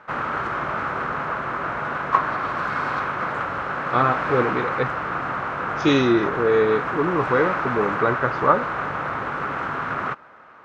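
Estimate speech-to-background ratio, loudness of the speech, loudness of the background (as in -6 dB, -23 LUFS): 3.5 dB, -22.0 LUFS, -25.5 LUFS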